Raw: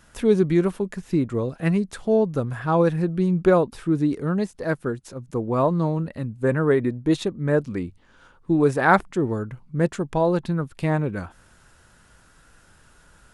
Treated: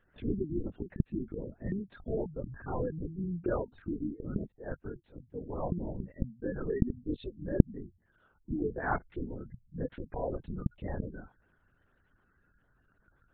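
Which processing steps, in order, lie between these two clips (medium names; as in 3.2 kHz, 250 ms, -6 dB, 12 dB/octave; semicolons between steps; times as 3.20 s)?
band-stop 1.1 kHz, Q 6.1; spectral gate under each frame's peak -20 dB strong; LPC vocoder at 8 kHz whisper; trim -14.5 dB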